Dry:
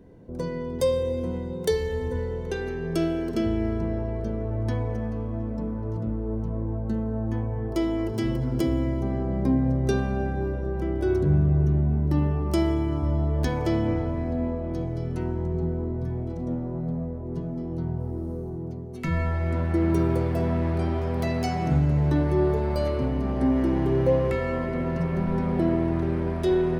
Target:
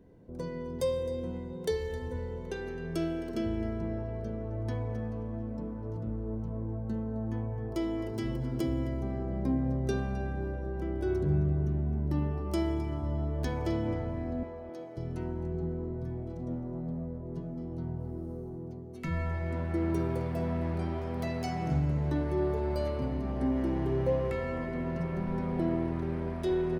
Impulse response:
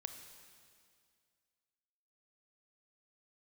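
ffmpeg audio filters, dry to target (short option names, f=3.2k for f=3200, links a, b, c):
-filter_complex "[0:a]asettb=1/sr,asplit=3[a][b][c];[a]atrim=end=1.054[d];[b]atrim=start=1.05:end=1.81,asetpts=PTS-STARTPTS,afade=t=in:d=0.004:c=qsin,afade=t=out:st=0.756:d=0.004:c=qsin,highshelf=f=7.8k:g=-4.5[e];[c]atrim=start=1.806[f];[d][e]acrossfade=d=0.004:c1=hsin:c2=qsin[g];[g][f]acrossfade=d=0.004:c1=qsin:c2=hsin,asettb=1/sr,asplit=3[h][i][j];[h]atrim=end=14.434[k];[i]atrim=start=14.43:end=14.97,asetpts=PTS-STARTPTS,afade=t=in:d=0.004:c=qsin,afade=t=out:st=0.536:d=0.004:c=qsin,highpass=440[l];[j]atrim=start=14.966[m];[k][l]acrossfade=d=0.004:c1=hsin:c2=qsin[n];[n][m]acrossfade=d=0.004:c1=qsin:c2=hsin,asplit=2[o][p];[p]adelay=262.4,volume=-13dB,highshelf=f=4k:g=-5.9[q];[o][q]amix=inputs=2:normalize=0,volume=-7dB"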